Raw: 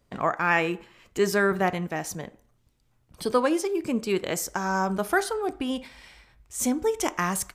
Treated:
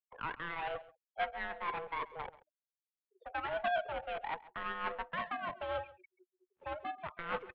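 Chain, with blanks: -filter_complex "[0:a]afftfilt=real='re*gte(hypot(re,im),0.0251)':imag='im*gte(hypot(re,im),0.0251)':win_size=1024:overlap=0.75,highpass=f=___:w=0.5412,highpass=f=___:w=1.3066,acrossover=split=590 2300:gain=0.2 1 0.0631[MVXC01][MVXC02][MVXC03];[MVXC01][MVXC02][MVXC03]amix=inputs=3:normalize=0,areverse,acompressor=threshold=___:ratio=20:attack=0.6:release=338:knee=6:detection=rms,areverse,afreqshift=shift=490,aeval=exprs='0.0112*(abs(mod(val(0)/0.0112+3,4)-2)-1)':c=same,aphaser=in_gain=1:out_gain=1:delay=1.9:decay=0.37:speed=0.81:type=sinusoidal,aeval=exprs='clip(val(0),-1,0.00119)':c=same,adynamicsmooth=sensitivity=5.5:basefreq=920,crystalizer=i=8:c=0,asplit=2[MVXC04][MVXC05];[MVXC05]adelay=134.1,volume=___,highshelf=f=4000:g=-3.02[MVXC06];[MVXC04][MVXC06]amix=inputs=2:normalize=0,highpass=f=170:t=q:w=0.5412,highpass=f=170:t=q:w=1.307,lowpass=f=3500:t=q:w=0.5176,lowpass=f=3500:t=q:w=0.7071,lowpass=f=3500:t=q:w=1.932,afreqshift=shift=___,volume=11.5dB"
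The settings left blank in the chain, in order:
55, 55, -38dB, -19dB, -180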